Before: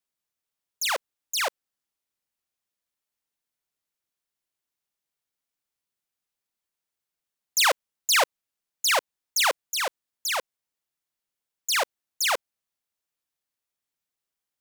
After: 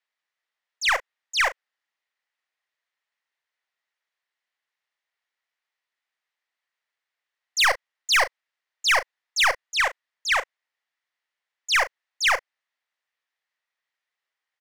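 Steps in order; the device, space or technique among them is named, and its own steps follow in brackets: megaphone (band-pass 680–3700 Hz; peaking EQ 1.9 kHz +9 dB 0.29 oct; hard clipper -22 dBFS, distortion -7 dB; doubling 36 ms -13 dB); trim +6 dB

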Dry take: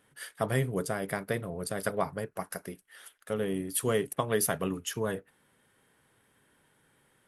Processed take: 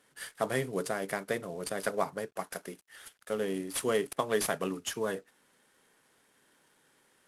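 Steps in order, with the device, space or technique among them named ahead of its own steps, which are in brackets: early wireless headset (high-pass 220 Hz 12 dB/octave; CVSD coder 64 kbps)

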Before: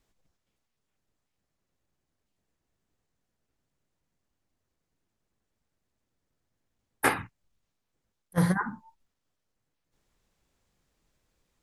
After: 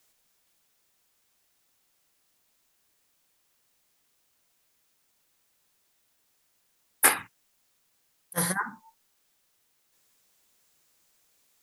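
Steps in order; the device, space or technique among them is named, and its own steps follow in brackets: turntable without a phono preamp (RIAA curve recording; white noise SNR 34 dB)

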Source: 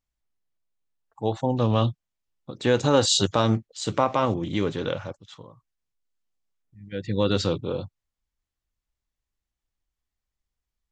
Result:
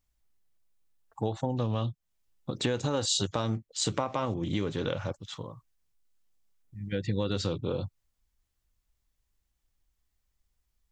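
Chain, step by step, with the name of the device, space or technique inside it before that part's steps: ASMR close-microphone chain (bass shelf 130 Hz +5.5 dB; compression 5:1, threshold -31 dBFS, peak gain reduction 15.5 dB; treble shelf 6.8 kHz +5.5 dB); trim +3.5 dB

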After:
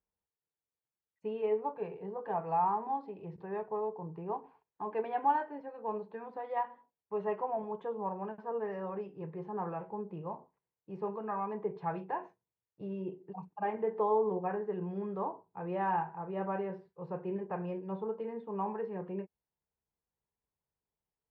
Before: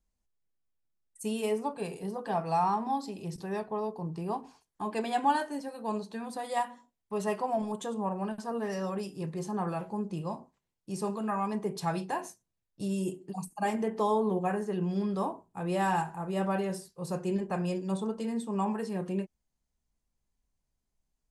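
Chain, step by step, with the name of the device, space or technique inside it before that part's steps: bass cabinet (cabinet simulation 86–2300 Hz, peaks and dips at 240 Hz -8 dB, 450 Hz +8 dB, 910 Hz +6 dB); trim -6.5 dB

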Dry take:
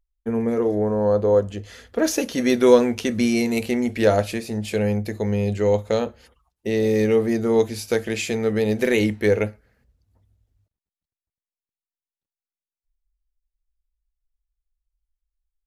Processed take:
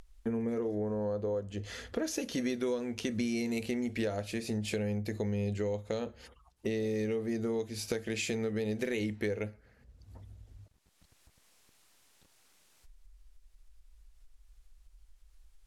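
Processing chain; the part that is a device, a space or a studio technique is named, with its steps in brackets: upward and downward compression (upward compressor, threshold -38 dBFS; compression 6:1, threshold -30 dBFS, peak gain reduction 20 dB); low-pass 11 kHz 12 dB/octave; dynamic bell 900 Hz, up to -4 dB, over -45 dBFS, Q 0.81

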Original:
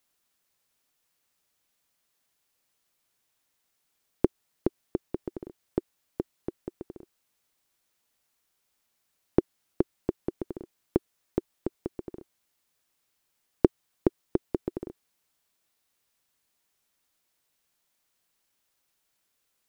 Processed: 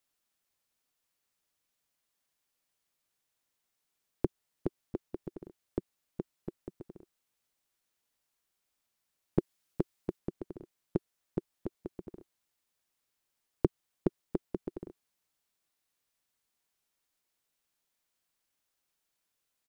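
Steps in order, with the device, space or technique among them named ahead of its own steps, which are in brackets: 9.39–10.19 s: treble shelf 2.2 kHz +4 dB; octave pedal (harmony voices -12 st -9 dB); trim -7 dB

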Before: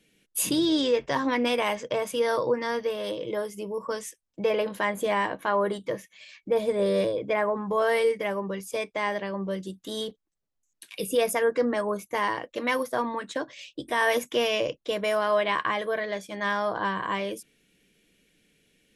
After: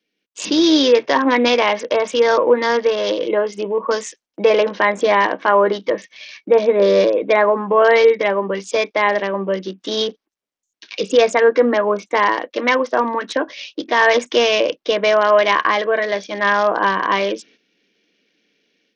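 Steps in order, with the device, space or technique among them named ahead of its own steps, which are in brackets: gate -57 dBFS, range -10 dB; Bluetooth headset (high-pass 230 Hz 24 dB/octave; level rider gain up to 11.5 dB; resampled via 16 kHz; trim +1 dB; SBC 64 kbps 48 kHz)

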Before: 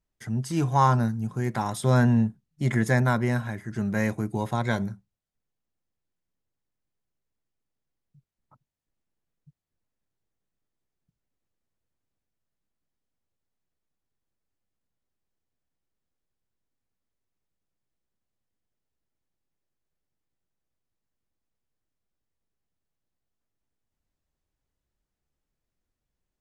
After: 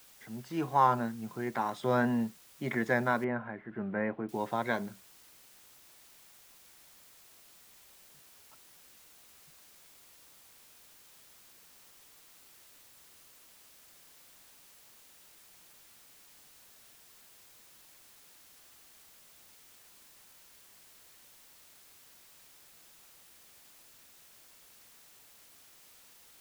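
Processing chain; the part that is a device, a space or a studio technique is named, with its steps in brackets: dictaphone (band-pass 280–3200 Hz; level rider gain up to 5 dB; wow and flutter; white noise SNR 19 dB); 3.24–4.29 s: Bessel low-pass 1.7 kHz, order 6; trim -7.5 dB

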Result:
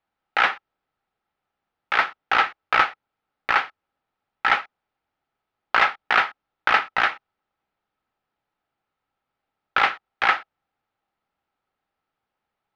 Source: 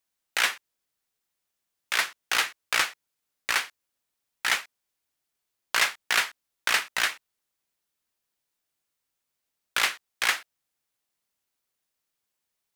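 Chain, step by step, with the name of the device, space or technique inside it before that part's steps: distance through air 300 m; inside a helmet (treble shelf 3 kHz -7 dB; small resonant body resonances 810/1300 Hz, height 10 dB, ringing for 30 ms); trim +8.5 dB

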